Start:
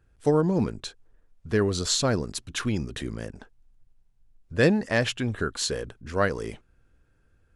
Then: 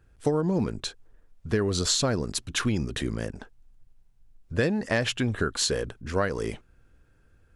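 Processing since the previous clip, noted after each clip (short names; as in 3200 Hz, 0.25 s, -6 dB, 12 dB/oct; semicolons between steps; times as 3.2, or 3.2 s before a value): compressor 12:1, threshold -24 dBFS, peak gain reduction 10 dB; gain +3.5 dB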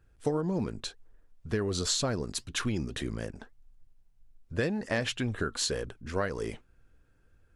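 flange 1.9 Hz, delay 0.7 ms, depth 3.9 ms, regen +82%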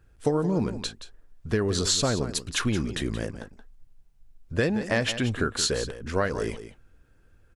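echo 0.175 s -12 dB; gain +5 dB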